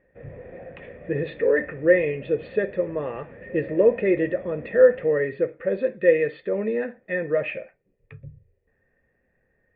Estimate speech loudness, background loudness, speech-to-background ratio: −23.0 LKFS, −42.5 LKFS, 19.5 dB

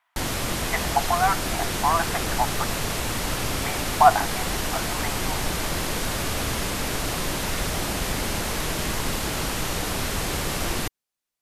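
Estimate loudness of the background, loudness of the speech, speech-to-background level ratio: −26.5 LKFS, −25.5 LKFS, 1.0 dB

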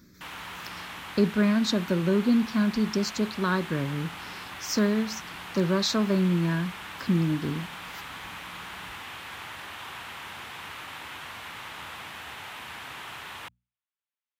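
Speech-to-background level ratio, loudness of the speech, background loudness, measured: 12.5 dB, −26.5 LKFS, −39.0 LKFS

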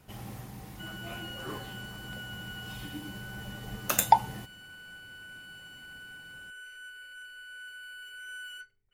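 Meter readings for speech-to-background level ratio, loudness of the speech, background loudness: 11.0 dB, −33.5 LKFS, −44.5 LKFS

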